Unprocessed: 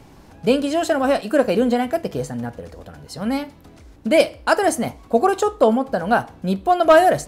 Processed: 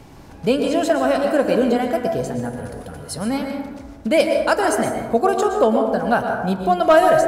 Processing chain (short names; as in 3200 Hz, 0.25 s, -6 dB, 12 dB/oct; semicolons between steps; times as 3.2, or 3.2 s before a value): plate-style reverb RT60 1.2 s, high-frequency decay 0.4×, pre-delay 0.1 s, DRR 4 dB; in parallel at -2 dB: compressor, threshold -28 dBFS, peak gain reduction 19.5 dB; 2.45–3.3 on the sum: bell 10000 Hz +14 dB 0.33 oct; gain -2.5 dB